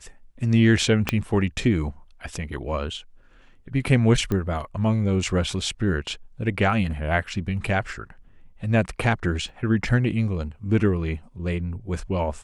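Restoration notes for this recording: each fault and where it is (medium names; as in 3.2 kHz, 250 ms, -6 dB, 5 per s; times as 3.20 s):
1.09 s: pop -6 dBFS
4.32 s: pop -14 dBFS
9.49 s: dropout 2.3 ms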